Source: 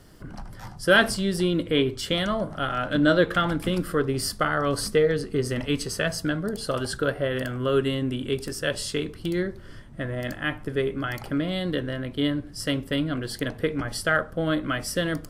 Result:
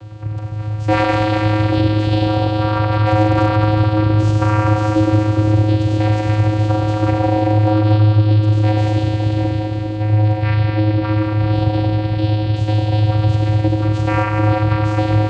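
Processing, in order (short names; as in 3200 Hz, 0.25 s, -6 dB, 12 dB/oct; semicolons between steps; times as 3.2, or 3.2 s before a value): fixed phaser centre 1400 Hz, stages 8; Schroeder reverb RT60 3.7 s, combs from 33 ms, DRR -4 dB; in parallel at -10 dB: wrapped overs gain 13 dB; on the sum: vocoder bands 8, square 106 Hz; three-band squash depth 40%; gain +7.5 dB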